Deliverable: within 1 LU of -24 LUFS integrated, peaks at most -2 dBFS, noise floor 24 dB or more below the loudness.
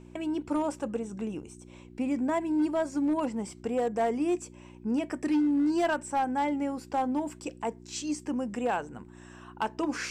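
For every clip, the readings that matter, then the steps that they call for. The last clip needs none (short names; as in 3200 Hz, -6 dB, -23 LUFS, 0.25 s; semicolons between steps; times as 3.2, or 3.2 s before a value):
clipped 1.6%; flat tops at -21.5 dBFS; hum 60 Hz; harmonics up to 360 Hz; hum level -49 dBFS; loudness -30.5 LUFS; peak -21.5 dBFS; loudness target -24.0 LUFS
-> clip repair -21.5 dBFS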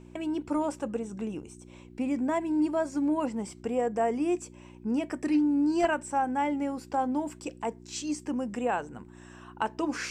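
clipped 0.0%; hum 60 Hz; harmonics up to 360 Hz; hum level -48 dBFS
-> de-hum 60 Hz, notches 6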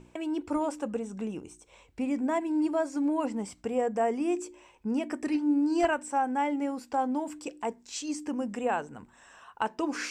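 hum none; loudness -30.5 LUFS; peak -13.0 dBFS; loudness target -24.0 LUFS
-> gain +6.5 dB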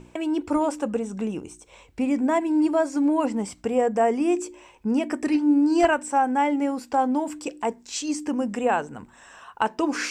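loudness -24.0 LUFS; peak -6.5 dBFS; noise floor -54 dBFS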